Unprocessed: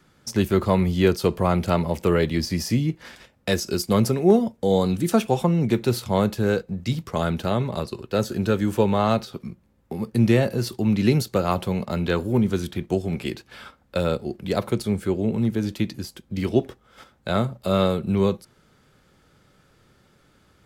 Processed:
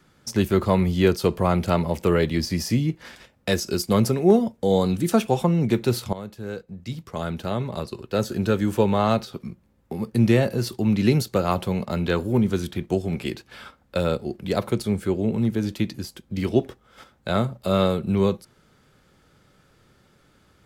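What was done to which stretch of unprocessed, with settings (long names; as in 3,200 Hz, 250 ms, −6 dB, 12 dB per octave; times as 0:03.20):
0:06.13–0:08.39: fade in, from −17 dB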